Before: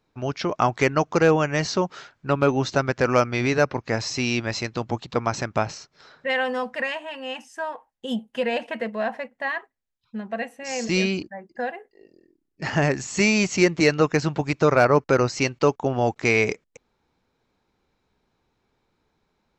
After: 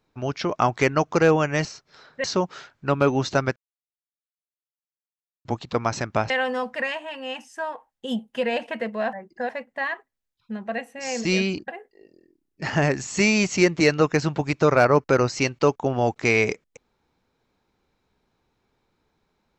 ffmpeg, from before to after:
-filter_complex "[0:a]asplit=9[a][b][c][d][e][f][g][h][i];[a]atrim=end=1.652[j];[b]atrim=start=5.708:end=6.302[k];[c]atrim=start=1.648:end=2.97,asetpts=PTS-STARTPTS,afade=t=out:st=1.318:d=0.004:c=hsin[l];[d]atrim=start=2.97:end=4.86,asetpts=PTS-STARTPTS,volume=0[m];[e]atrim=start=4.86:end=5.712,asetpts=PTS-STARTPTS,afade=t=in:d=0.004:c=hsin[n];[f]atrim=start=6.298:end=9.132[o];[g]atrim=start=11.318:end=11.682[p];[h]atrim=start=9.128:end=11.322[q];[i]atrim=start=11.678[r];[j][k]acrossfade=d=0.004:c1=hsin:c2=hsin[s];[l][m][n]concat=n=3:v=0:a=1[t];[s][t]acrossfade=d=0.004:c1=hsin:c2=hsin[u];[u][o]acrossfade=d=0.004:c1=hsin:c2=hsin[v];[v][p]acrossfade=d=0.004:c1=hsin:c2=hsin[w];[w][q]acrossfade=d=0.004:c1=hsin:c2=hsin[x];[x][r]acrossfade=d=0.004:c1=hsin:c2=hsin"

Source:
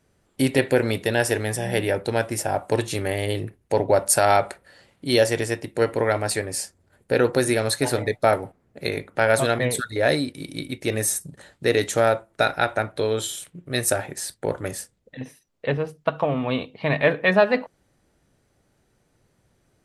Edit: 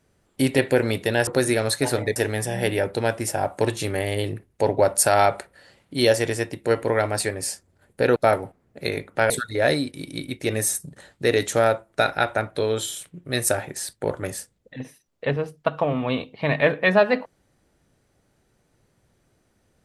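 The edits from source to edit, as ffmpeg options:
-filter_complex "[0:a]asplit=5[a][b][c][d][e];[a]atrim=end=1.272[f];[b]atrim=start=7.268:end=8.162[g];[c]atrim=start=1.268:end=7.272[h];[d]atrim=start=8.158:end=9.302[i];[e]atrim=start=9.708[j];[f][g]acrossfade=d=0.004:c1=hsin:c2=hsin[k];[k][h]acrossfade=d=0.004:c1=hsin:c2=hsin[l];[l][i]acrossfade=d=0.004:c1=hsin:c2=hsin[m];[m][j]acrossfade=d=0.004:c1=hsin:c2=hsin"

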